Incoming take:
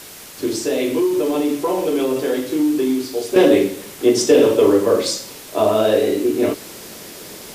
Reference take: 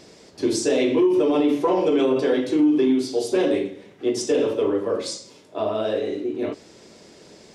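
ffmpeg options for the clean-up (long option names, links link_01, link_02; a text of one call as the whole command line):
ffmpeg -i in.wav -af "afwtdn=0.014,asetnsamples=nb_out_samples=441:pad=0,asendcmd='3.36 volume volume -8.5dB',volume=0dB" out.wav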